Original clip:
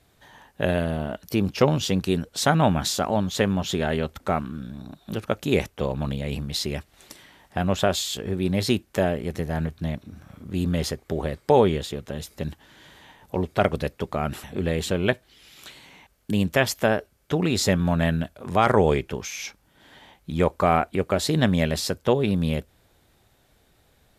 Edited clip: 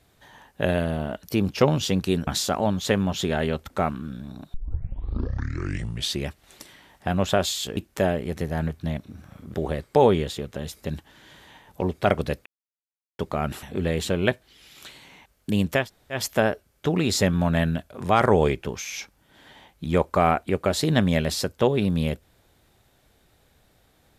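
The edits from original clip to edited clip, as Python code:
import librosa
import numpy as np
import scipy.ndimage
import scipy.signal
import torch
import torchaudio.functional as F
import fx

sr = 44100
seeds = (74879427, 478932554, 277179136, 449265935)

y = fx.edit(x, sr, fx.cut(start_s=2.27, length_s=0.5),
    fx.tape_start(start_s=5.04, length_s=1.73),
    fx.cut(start_s=8.27, length_s=0.48),
    fx.cut(start_s=10.52, length_s=0.56),
    fx.insert_silence(at_s=14.0, length_s=0.73),
    fx.insert_room_tone(at_s=16.63, length_s=0.35, crossfade_s=0.16), tone=tone)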